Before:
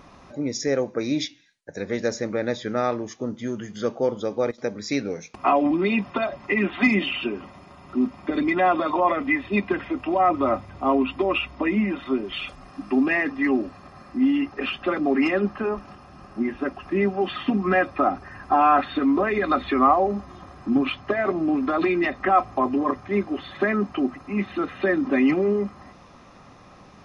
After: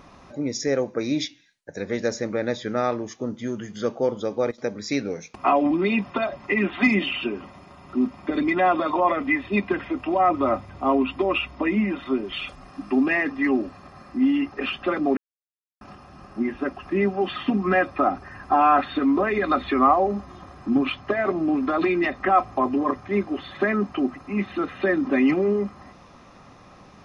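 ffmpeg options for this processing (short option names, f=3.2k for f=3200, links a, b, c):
-filter_complex "[0:a]asplit=3[a][b][c];[a]atrim=end=15.17,asetpts=PTS-STARTPTS,afade=t=out:st=15.166:d=0.004:c=hsin[d];[b]atrim=start=15.17:end=15.81,asetpts=PTS-STARTPTS,volume=0[e];[c]atrim=start=15.81,asetpts=PTS-STARTPTS,afade=t=in:d=0.004:c=hsin[f];[d][e][f]concat=n=3:v=0:a=1"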